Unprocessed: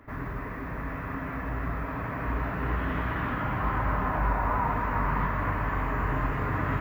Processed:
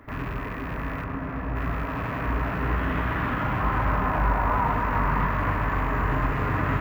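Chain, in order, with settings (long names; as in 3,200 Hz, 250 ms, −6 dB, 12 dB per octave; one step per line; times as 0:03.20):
loose part that buzzes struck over −39 dBFS, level −36 dBFS
0:01.04–0:01.56: high-shelf EQ 2,100 Hz −11.5 dB
level +3.5 dB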